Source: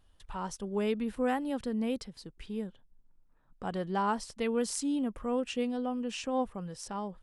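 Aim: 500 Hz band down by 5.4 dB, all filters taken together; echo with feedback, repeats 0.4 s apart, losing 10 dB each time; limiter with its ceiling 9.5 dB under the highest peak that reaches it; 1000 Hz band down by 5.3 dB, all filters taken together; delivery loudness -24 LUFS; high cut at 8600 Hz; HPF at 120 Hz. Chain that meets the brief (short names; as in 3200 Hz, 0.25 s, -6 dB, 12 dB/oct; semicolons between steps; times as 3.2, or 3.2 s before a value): HPF 120 Hz; LPF 8600 Hz; bell 500 Hz -5 dB; bell 1000 Hz -5 dB; limiter -28.5 dBFS; feedback echo 0.4 s, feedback 32%, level -10 dB; gain +13.5 dB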